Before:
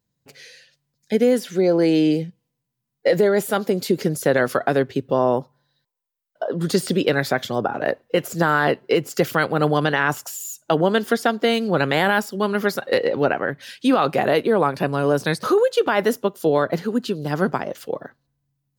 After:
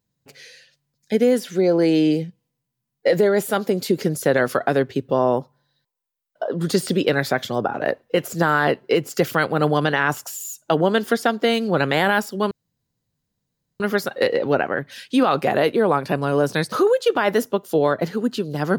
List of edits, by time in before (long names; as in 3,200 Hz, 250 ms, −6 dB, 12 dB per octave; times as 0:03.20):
0:12.51: splice in room tone 1.29 s